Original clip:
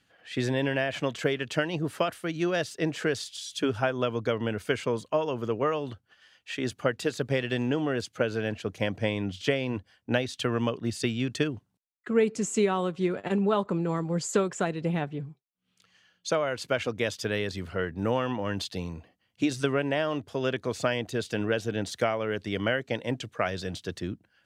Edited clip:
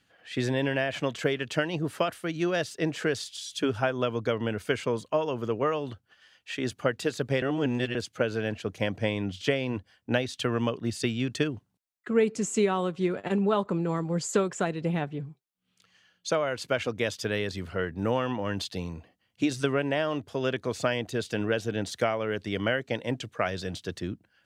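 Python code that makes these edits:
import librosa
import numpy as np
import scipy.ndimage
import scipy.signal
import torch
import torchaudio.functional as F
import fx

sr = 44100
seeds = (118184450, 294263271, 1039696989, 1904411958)

y = fx.edit(x, sr, fx.reverse_span(start_s=7.42, length_s=0.53), tone=tone)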